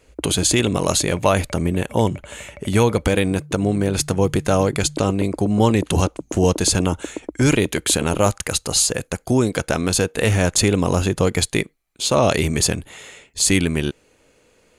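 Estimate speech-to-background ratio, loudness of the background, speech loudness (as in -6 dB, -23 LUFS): 16.0 dB, -35.5 LUFS, -19.5 LUFS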